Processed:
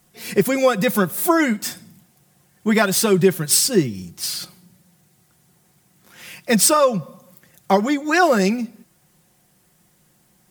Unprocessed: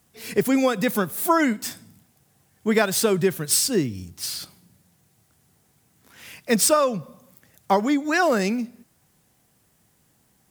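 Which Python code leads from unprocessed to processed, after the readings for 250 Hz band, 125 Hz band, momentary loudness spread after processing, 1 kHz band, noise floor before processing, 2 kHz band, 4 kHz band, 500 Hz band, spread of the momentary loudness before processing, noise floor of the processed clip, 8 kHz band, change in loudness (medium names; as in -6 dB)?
+3.5 dB, +6.0 dB, 13 LU, +3.0 dB, -64 dBFS, +4.0 dB, +4.0 dB, +4.0 dB, 12 LU, -60 dBFS, +4.0 dB, +4.0 dB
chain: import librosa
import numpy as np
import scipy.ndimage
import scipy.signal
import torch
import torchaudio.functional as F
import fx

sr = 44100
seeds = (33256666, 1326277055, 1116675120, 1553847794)

y = x + 0.54 * np.pad(x, (int(5.6 * sr / 1000.0), 0))[:len(x)]
y = y * librosa.db_to_amplitude(3.0)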